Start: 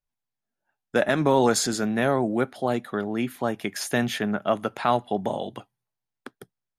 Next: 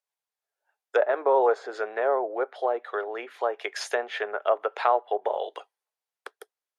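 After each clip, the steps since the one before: low-pass that closes with the level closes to 1.1 kHz, closed at -20 dBFS; elliptic high-pass 430 Hz, stop band 60 dB; trim +2 dB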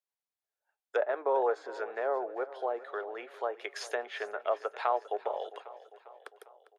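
feedback delay 401 ms, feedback 56%, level -17 dB; trim -7 dB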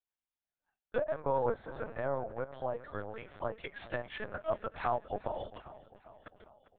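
LPC vocoder at 8 kHz pitch kept; trim -3 dB

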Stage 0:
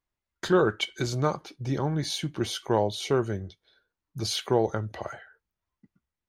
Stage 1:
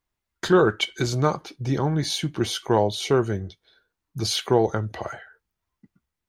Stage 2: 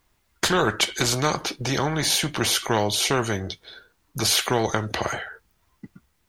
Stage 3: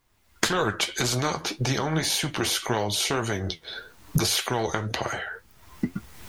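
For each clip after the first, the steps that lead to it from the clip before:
band-stop 570 Hz, Q 15; trim +4.5 dB
spectrum-flattening compressor 2:1; trim +1 dB
recorder AGC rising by 32 dB/s; flange 1.8 Hz, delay 6.8 ms, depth 6.2 ms, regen +59%

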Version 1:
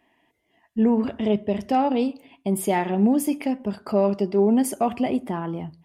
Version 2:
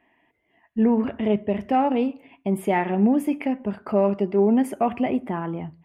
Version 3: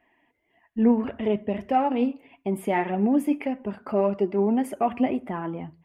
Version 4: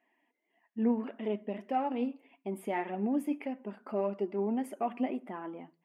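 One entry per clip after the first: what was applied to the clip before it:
resonant high shelf 3.3 kHz -11.5 dB, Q 1.5
flange 1.7 Hz, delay 1.3 ms, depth 3 ms, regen +54%; trim +2 dB
brick-wall FIR high-pass 180 Hz; trim -9 dB

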